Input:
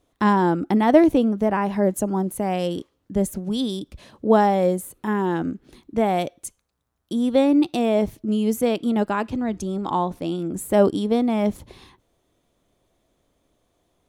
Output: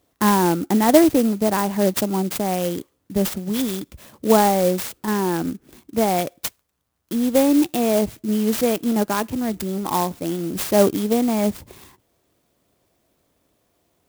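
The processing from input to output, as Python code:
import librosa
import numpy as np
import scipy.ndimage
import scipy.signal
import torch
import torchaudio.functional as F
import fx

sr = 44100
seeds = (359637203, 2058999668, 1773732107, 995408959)

y = scipy.signal.sosfilt(scipy.signal.butter(2, 58.0, 'highpass', fs=sr, output='sos'), x)
y = fx.high_shelf(y, sr, hz=5100.0, db=10.0)
y = fx.clock_jitter(y, sr, seeds[0], jitter_ms=0.063)
y = F.gain(torch.from_numpy(y), 1.0).numpy()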